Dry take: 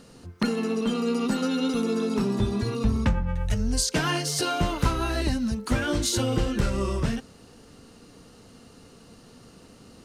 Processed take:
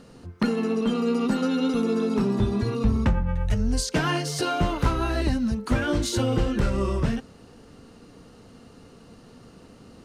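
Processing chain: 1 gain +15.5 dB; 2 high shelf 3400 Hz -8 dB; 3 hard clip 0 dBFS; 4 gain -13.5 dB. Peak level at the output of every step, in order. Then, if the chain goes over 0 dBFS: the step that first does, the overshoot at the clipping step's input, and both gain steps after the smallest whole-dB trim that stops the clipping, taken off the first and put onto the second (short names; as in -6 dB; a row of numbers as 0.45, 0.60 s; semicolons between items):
+5.5, +5.0, 0.0, -13.5 dBFS; step 1, 5.0 dB; step 1 +10.5 dB, step 4 -8.5 dB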